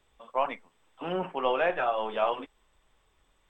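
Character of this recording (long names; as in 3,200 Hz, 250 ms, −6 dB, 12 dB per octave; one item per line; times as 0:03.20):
background noise floor −70 dBFS
spectral slope −2.0 dB per octave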